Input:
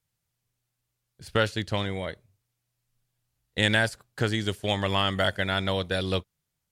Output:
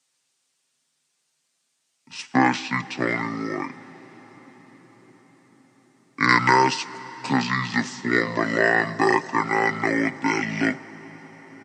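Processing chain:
Butterworth high-pass 240 Hz 48 dB per octave
high-shelf EQ 4,500 Hz +8.5 dB
comb filter 4.4 ms, depth 43%
convolution reverb RT60 4.5 s, pre-delay 22 ms, DRR 16 dB
wrong playback speed 78 rpm record played at 45 rpm
level +4 dB

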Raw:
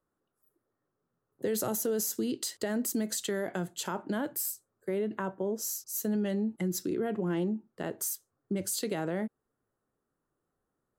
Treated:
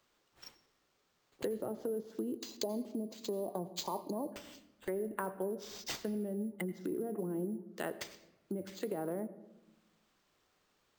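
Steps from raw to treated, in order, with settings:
gain on a spectral selection 0:02.36–0:04.33, 1,200–3,800 Hz −29 dB
treble cut that deepens with the level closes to 440 Hz, closed at −27 dBFS
RIAA equalisation recording
in parallel at +2.5 dB: downward compressor, threshold −49 dBFS, peak gain reduction 16.5 dB
on the sum: sample-rate reduction 11,000 Hz, jitter 0%
on a send at −16 dB: convolution reverb RT60 1.0 s, pre-delay 76 ms
on the sum: level −2 dB

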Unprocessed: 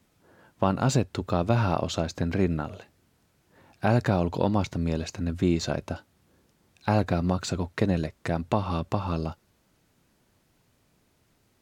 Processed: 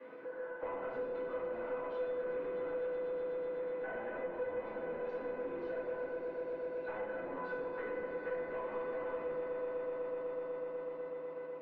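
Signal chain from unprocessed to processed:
0:02.06–0:04.17: variable-slope delta modulation 16 kbit/s
downward compressor 4 to 1, threshold −38 dBFS, peak gain reduction 17 dB
four-pole ladder high-pass 270 Hz, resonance 25%
echo that builds up and dies away 124 ms, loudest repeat 5, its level −13.5 dB
convolution reverb RT60 1.0 s, pre-delay 3 ms, DRR −15.5 dB
soft clipping −33 dBFS, distortion −9 dB
low-pass filter 2,200 Hz 24 dB per octave
tuned comb filter 500 Hz, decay 0.19 s, harmonics all, mix 90%
multiband upward and downward compressor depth 70%
level +7.5 dB

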